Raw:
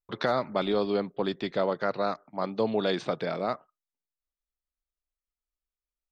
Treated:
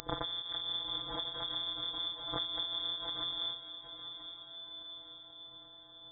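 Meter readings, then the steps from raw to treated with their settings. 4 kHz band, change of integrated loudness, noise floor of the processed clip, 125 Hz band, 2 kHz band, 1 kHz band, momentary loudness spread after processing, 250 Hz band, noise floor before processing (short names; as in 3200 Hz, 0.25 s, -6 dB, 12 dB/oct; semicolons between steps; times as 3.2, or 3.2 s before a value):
+7.5 dB, -7.5 dB, -55 dBFS, -12.5 dB, -13.5 dB, -12.5 dB, 15 LU, -18.5 dB, under -85 dBFS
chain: spectral contrast lowered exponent 0.1; recorder AGC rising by 23 dB/s; treble ducked by the level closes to 680 Hz, closed at -25.5 dBFS; Chebyshev band-stop 160–2600 Hz, order 3; bell 140 Hz -6.5 dB 2.2 oct; robotiser 177 Hz; diffused feedback echo 0.94 s, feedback 53%, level -10 dB; inverted band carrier 3500 Hz; backwards sustainer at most 58 dB/s; gain +9 dB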